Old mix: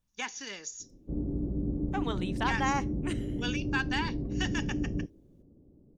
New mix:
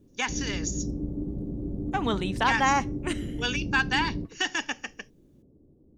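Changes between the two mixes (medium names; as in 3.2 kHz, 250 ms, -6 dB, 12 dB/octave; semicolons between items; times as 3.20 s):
speech +7.0 dB; background: entry -0.80 s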